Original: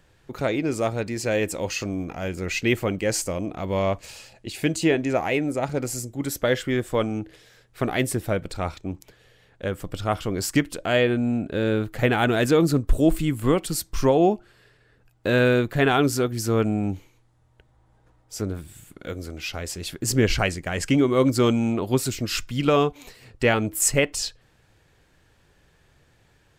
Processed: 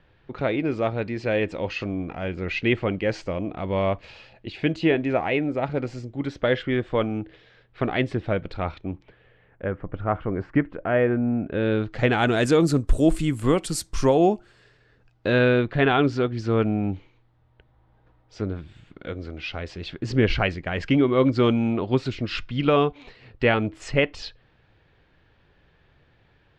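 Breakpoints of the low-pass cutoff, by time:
low-pass 24 dB/octave
8.77 s 3.7 kHz
9.83 s 1.9 kHz
11.34 s 1.9 kHz
11.73 s 4.1 kHz
12.55 s 10 kHz
14.32 s 10 kHz
15.57 s 3.9 kHz

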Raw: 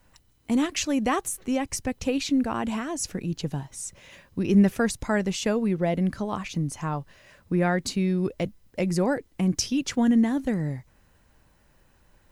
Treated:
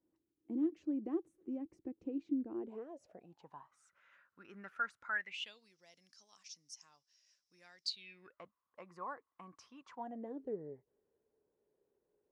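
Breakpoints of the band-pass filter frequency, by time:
band-pass filter, Q 11
2.51 s 330 Hz
3.85 s 1.4 kHz
5.09 s 1.4 kHz
5.71 s 5.5 kHz
7.81 s 5.5 kHz
8.42 s 1.1 kHz
9.88 s 1.1 kHz
10.37 s 420 Hz

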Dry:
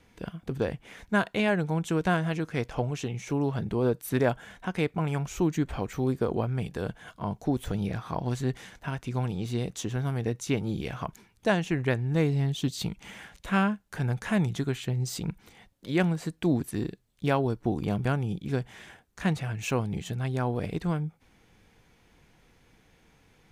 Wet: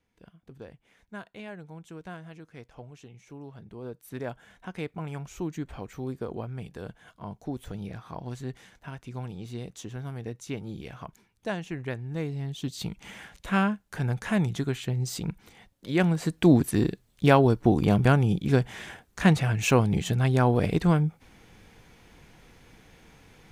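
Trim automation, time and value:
3.62 s -16 dB
4.61 s -7 dB
12.40 s -7 dB
13.07 s +0.5 dB
15.93 s +0.5 dB
16.41 s +7 dB

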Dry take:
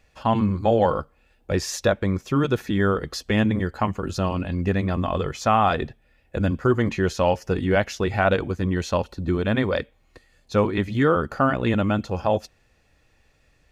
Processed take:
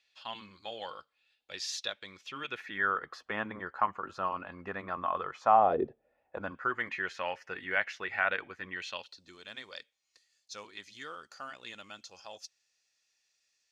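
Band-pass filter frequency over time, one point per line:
band-pass filter, Q 2.3
2.08 s 3.8 kHz
3.13 s 1.2 kHz
5.40 s 1.2 kHz
5.80 s 360 Hz
6.77 s 1.9 kHz
8.69 s 1.9 kHz
9.26 s 5.7 kHz

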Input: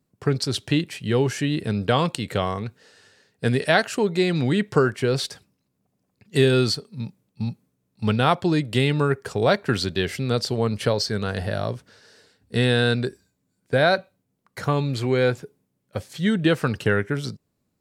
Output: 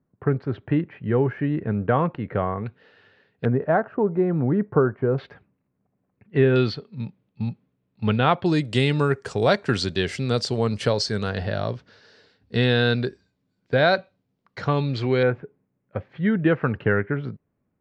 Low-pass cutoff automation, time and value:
low-pass 24 dB/octave
1.8 kHz
from 2.66 s 3.2 kHz
from 3.45 s 1.3 kHz
from 5.18 s 2.2 kHz
from 6.56 s 3.5 kHz
from 8.46 s 8.2 kHz
from 11.29 s 4.9 kHz
from 15.23 s 2.2 kHz

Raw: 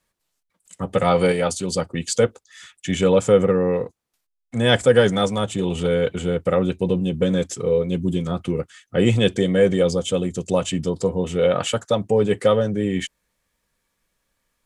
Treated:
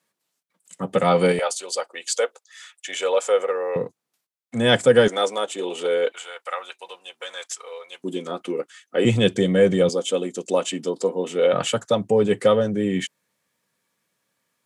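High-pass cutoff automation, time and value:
high-pass 24 dB/octave
150 Hz
from 1.39 s 520 Hz
from 3.76 s 130 Hz
from 5.08 s 350 Hz
from 6.12 s 830 Hz
from 8.04 s 280 Hz
from 9.05 s 110 Hz
from 9.89 s 250 Hz
from 11.53 s 120 Hz

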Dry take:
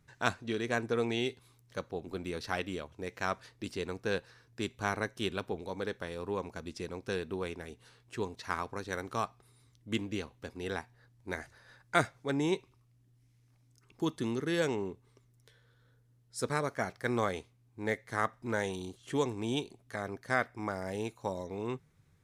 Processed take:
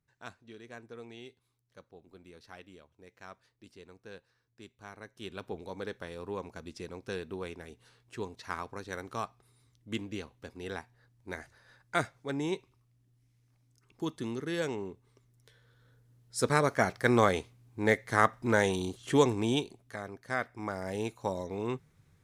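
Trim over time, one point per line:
4.95 s -15.5 dB
5.53 s -2.5 dB
14.88 s -2.5 dB
16.74 s +7 dB
19.33 s +7 dB
20.13 s -4.5 dB
21.07 s +2.5 dB

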